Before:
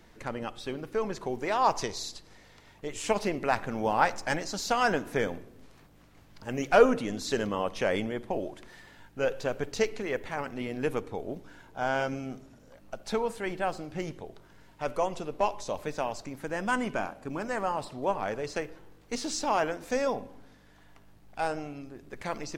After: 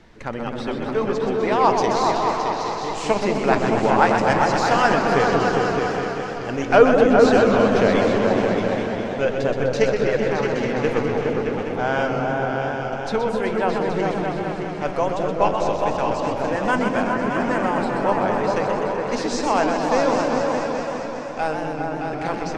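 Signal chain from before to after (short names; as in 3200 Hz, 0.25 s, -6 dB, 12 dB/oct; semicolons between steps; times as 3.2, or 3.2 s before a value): air absorption 74 m; repeats that get brighter 0.206 s, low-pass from 400 Hz, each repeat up 2 oct, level 0 dB; warbling echo 0.127 s, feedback 75%, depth 141 cents, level -7 dB; gain +6.5 dB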